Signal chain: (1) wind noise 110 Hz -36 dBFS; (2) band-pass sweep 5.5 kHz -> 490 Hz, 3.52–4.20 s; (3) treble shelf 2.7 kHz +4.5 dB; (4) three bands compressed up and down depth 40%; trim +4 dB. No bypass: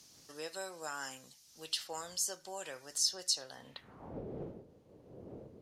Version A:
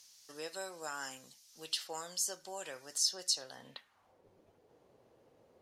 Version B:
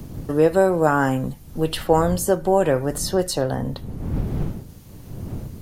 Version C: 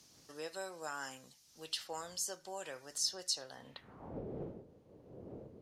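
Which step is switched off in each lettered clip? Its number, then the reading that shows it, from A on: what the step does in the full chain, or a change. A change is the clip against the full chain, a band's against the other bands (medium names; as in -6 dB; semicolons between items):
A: 1, 125 Hz band -11.5 dB; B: 2, 4 kHz band -21.5 dB; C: 3, 8 kHz band -3.5 dB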